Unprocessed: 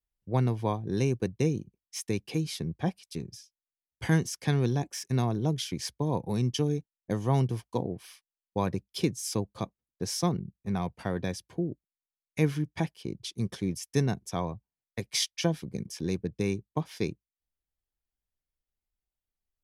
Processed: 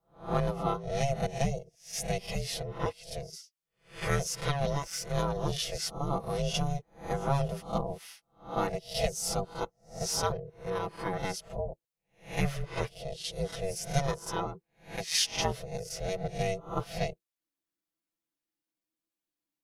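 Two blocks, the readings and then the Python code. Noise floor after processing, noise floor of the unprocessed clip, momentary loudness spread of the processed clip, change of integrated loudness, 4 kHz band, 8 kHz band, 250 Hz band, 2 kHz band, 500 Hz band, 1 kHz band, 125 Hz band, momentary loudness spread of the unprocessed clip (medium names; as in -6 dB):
under -85 dBFS, under -85 dBFS, 9 LU, -2.0 dB, +2.0 dB, +2.0 dB, -7.5 dB, +1.5 dB, +0.5 dB, +3.5 dB, -5.0 dB, 11 LU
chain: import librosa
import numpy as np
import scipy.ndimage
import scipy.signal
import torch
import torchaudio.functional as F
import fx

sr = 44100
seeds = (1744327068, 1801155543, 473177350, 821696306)

y = fx.spec_swells(x, sr, rise_s=0.36)
y = fx.low_shelf(y, sr, hz=120.0, db=-11.5)
y = y * np.sin(2.0 * np.pi * 280.0 * np.arange(len(y)) / sr)
y = y + 0.97 * np.pad(y, (int(6.0 * sr / 1000.0), 0))[:len(y)]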